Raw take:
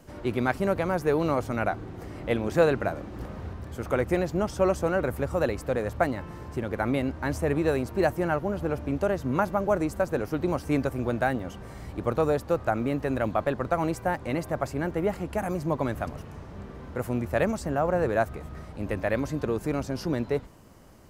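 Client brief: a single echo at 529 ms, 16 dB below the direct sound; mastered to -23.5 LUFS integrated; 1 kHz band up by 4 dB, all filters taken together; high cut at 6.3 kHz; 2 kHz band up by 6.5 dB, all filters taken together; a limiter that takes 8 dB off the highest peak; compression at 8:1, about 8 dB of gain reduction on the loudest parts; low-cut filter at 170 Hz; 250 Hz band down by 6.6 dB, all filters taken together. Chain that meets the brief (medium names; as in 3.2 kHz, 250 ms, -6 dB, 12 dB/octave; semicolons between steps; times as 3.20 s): high-pass 170 Hz; low-pass 6.3 kHz; peaking EQ 250 Hz -8.5 dB; peaking EQ 1 kHz +4.5 dB; peaking EQ 2 kHz +7 dB; compression 8:1, threshold -24 dBFS; peak limiter -19 dBFS; delay 529 ms -16 dB; trim +10 dB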